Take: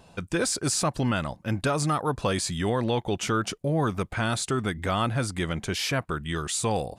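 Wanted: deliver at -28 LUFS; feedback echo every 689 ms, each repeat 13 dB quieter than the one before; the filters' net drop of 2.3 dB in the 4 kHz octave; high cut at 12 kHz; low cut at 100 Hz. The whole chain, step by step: high-pass 100 Hz; low-pass 12 kHz; peaking EQ 4 kHz -3 dB; feedback delay 689 ms, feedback 22%, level -13 dB

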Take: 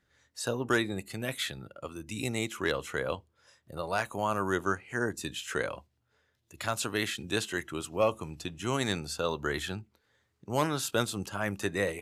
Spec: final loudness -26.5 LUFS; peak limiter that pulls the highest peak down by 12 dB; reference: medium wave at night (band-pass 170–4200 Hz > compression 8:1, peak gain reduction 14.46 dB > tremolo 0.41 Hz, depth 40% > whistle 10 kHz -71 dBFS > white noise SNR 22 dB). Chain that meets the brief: peak limiter -27.5 dBFS; band-pass 170–4200 Hz; compression 8:1, threshold -47 dBFS; tremolo 0.41 Hz, depth 40%; whistle 10 kHz -71 dBFS; white noise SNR 22 dB; trim +26 dB

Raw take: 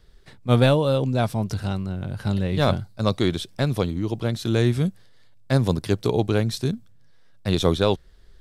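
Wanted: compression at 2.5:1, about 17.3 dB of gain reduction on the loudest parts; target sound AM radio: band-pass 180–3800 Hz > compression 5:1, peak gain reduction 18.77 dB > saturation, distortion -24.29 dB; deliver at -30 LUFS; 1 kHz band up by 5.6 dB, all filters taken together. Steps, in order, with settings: peaking EQ 1 kHz +7.5 dB; compression 2.5:1, threshold -39 dBFS; band-pass 180–3800 Hz; compression 5:1, threshold -50 dBFS; saturation -35 dBFS; trim +24 dB

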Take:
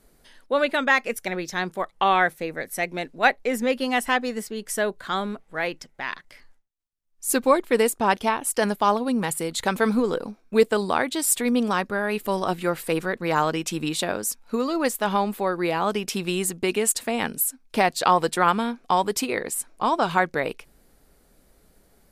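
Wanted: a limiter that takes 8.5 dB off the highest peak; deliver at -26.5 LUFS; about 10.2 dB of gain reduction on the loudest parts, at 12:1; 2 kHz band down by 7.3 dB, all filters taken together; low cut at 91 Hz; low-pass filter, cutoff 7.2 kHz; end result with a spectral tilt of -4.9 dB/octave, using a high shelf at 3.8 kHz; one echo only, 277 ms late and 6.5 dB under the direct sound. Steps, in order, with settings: high-pass 91 Hz; low-pass 7.2 kHz; peaking EQ 2 kHz -7.5 dB; treble shelf 3.8 kHz -8.5 dB; compression 12:1, threshold -23 dBFS; peak limiter -21 dBFS; delay 277 ms -6.5 dB; trim +4.5 dB

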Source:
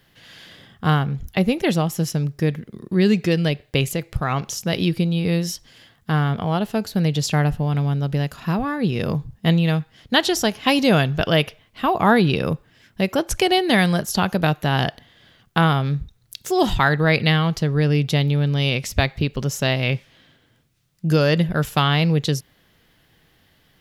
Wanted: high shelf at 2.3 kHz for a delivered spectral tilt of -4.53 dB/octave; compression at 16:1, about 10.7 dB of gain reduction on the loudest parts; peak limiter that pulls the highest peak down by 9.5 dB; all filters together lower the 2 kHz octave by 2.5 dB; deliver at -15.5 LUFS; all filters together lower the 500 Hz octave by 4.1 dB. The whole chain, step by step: peaking EQ 500 Hz -5.5 dB; peaking EQ 2 kHz -8 dB; treble shelf 2.3 kHz +9 dB; compression 16:1, threshold -23 dBFS; trim +13.5 dB; peak limiter -3.5 dBFS

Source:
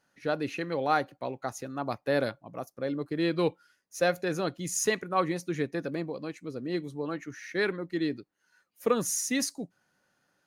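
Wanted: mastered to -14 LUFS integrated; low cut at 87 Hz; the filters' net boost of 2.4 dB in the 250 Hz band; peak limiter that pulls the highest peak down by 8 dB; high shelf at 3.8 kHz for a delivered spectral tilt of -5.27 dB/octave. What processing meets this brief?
high-pass 87 Hz; peaking EQ 250 Hz +3.5 dB; treble shelf 3.8 kHz -8 dB; trim +19 dB; peak limiter -1.5 dBFS

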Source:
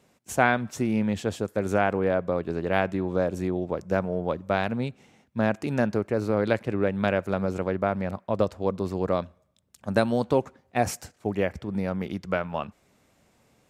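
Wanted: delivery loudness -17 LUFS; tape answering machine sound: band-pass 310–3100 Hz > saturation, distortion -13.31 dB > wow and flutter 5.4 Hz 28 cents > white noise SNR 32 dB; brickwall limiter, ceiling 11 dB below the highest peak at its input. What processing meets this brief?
peak limiter -16 dBFS; band-pass 310–3100 Hz; saturation -24.5 dBFS; wow and flutter 5.4 Hz 28 cents; white noise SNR 32 dB; trim +18 dB

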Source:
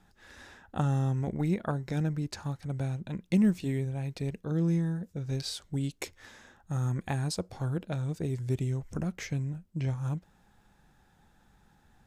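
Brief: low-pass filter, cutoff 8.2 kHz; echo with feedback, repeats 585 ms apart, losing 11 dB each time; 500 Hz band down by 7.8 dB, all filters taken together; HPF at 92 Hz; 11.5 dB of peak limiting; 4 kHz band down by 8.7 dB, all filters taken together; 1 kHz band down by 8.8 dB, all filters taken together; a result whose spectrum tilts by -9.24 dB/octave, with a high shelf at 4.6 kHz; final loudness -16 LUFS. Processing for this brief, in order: high-pass 92 Hz; low-pass 8.2 kHz; peaking EQ 500 Hz -9 dB; peaking EQ 1 kHz -8 dB; peaking EQ 4 kHz -8 dB; treble shelf 4.6 kHz -3.5 dB; peak limiter -29.5 dBFS; feedback delay 585 ms, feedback 28%, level -11 dB; trim +21.5 dB

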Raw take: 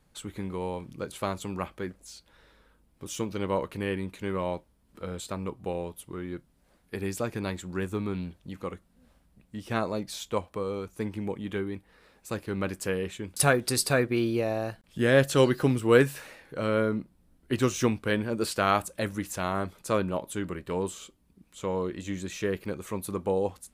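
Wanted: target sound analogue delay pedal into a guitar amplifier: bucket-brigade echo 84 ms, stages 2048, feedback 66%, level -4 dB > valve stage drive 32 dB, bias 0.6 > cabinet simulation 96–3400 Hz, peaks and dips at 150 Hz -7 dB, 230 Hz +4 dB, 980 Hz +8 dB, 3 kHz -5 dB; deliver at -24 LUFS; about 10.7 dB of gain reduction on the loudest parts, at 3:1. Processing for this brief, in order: compression 3:1, threshold -30 dBFS; bucket-brigade echo 84 ms, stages 2048, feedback 66%, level -4 dB; valve stage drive 32 dB, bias 0.6; cabinet simulation 96–3400 Hz, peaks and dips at 150 Hz -7 dB, 230 Hz +4 dB, 980 Hz +8 dB, 3 kHz -5 dB; trim +14 dB

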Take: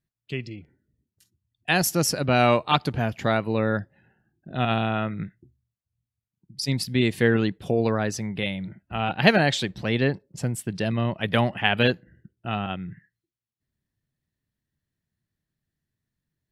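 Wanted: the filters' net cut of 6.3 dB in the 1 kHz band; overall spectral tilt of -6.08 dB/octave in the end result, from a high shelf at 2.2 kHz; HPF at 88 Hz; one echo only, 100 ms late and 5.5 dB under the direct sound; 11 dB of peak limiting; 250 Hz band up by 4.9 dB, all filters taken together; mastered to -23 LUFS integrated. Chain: high-pass 88 Hz; peaking EQ 250 Hz +6.5 dB; peaking EQ 1 kHz -9 dB; treble shelf 2.2 kHz -6.5 dB; peak limiter -15.5 dBFS; delay 100 ms -5.5 dB; trim +3.5 dB

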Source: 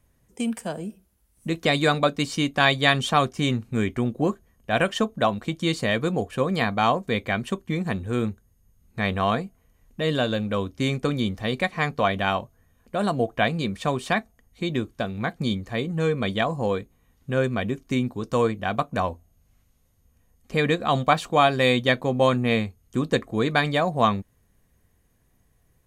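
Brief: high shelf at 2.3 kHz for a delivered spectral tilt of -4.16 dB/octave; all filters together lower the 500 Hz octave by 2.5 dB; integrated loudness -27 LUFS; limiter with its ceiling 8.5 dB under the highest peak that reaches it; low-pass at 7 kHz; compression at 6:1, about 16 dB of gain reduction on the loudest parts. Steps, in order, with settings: low-pass 7 kHz; peaking EQ 500 Hz -3.5 dB; treble shelf 2.3 kHz +6.5 dB; compression 6:1, threshold -31 dBFS; trim +10.5 dB; peak limiter -15 dBFS

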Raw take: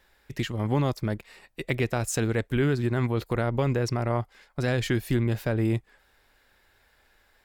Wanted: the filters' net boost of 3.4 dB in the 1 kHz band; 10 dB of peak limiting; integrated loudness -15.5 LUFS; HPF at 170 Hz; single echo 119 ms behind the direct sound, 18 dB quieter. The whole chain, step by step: high-pass 170 Hz; peaking EQ 1 kHz +4.5 dB; peak limiter -21 dBFS; delay 119 ms -18 dB; trim +17.5 dB

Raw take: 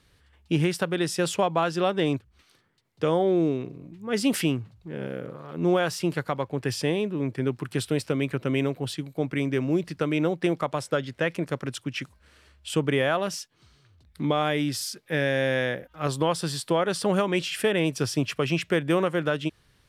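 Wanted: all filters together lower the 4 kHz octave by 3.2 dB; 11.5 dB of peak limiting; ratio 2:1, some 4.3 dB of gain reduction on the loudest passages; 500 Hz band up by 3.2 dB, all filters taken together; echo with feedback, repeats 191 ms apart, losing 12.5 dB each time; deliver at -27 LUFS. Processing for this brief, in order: peaking EQ 500 Hz +4 dB; peaking EQ 4 kHz -4.5 dB; compression 2:1, threshold -24 dBFS; peak limiter -23 dBFS; feedback delay 191 ms, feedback 24%, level -12.5 dB; trim +6.5 dB

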